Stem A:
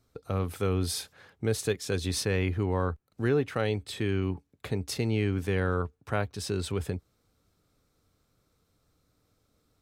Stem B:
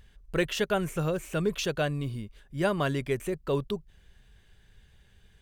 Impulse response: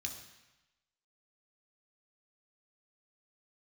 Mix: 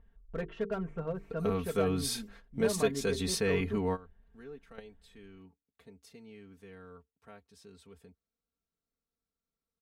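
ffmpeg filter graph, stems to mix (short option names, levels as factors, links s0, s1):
-filter_complex "[0:a]adelay=1150,volume=0.668[s0];[1:a]lowpass=1200,bandreject=f=50:t=h:w=6,bandreject=f=100:t=h:w=6,bandreject=f=150:t=h:w=6,bandreject=f=200:t=h:w=6,bandreject=f=250:t=h:w=6,bandreject=f=300:t=h:w=6,bandreject=f=350:t=h:w=6,bandreject=f=400:t=h:w=6,bandreject=f=450:t=h:w=6,asoftclip=type=hard:threshold=0.0794,volume=0.422,asplit=2[s1][s2];[s2]apad=whole_len=483603[s3];[s0][s3]sidechaingate=range=0.0891:threshold=0.00141:ratio=16:detection=peak[s4];[s4][s1]amix=inputs=2:normalize=0,aecho=1:1:4.4:0.77"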